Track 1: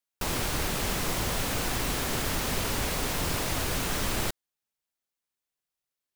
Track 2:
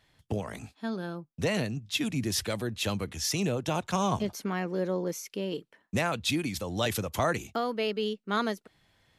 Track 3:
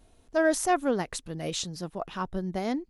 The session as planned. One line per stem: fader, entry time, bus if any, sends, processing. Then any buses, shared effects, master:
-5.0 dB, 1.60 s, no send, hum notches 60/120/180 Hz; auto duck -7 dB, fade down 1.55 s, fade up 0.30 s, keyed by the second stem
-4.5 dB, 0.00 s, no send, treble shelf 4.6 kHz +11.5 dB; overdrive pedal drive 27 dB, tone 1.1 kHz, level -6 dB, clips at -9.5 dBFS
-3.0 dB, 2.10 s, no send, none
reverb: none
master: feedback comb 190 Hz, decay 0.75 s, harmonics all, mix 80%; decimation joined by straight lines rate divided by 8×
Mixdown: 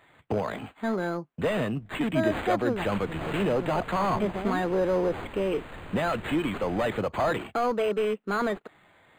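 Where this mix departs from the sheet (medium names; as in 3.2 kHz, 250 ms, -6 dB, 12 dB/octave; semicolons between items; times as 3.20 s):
stem 1: entry 1.60 s -> 2.55 s; stem 3: entry 2.10 s -> 1.80 s; master: missing feedback comb 190 Hz, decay 0.75 s, harmonics all, mix 80%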